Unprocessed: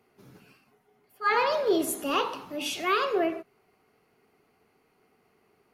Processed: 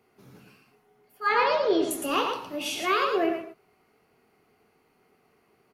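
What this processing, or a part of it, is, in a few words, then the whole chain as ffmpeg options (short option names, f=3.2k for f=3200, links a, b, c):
slapback doubling: -filter_complex "[0:a]asettb=1/sr,asplit=3[a][b][c];[a]atrim=end=1.334[d];[b]atrim=start=1.33:end=1.91,asetpts=PTS-STARTPTS,afade=t=in:d=0.004:c=qsin,afade=t=out:st=0.576:d=0.004:c=qsin,lowpass=f=5.7k:w=0.5412,lowpass=f=5.7k:w=1.3066[e];[c]atrim=start=1.906[f];[d][e]acrossfade=d=0.004:c1=hsin:c2=qsin[g];[g][f]acrossfade=d=0.004:c1=qsin:c2=hsin,asplit=3[h][i][j];[i]adelay=24,volume=-8.5dB[k];[j]adelay=112,volume=-5.5dB[l];[h][k][l]amix=inputs=3:normalize=0"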